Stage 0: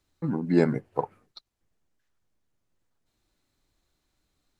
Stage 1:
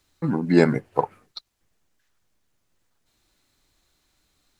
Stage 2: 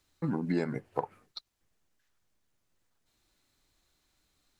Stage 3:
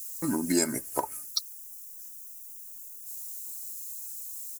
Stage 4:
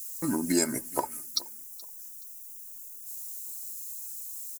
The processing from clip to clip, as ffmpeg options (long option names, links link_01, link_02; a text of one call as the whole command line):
ffmpeg -i in.wav -af "tiltshelf=frequency=970:gain=-3,volume=7dB" out.wav
ffmpeg -i in.wav -af "acompressor=threshold=-21dB:ratio=6,volume=-5.5dB" out.wav
ffmpeg -i in.wav -af "aexciter=amount=14.2:drive=2.3:freq=5500,aemphasis=mode=production:type=75kf,aecho=1:1:3.2:0.6,volume=1.5dB" out.wav
ffmpeg -i in.wav -af "aecho=1:1:425|850:0.0794|0.0222" out.wav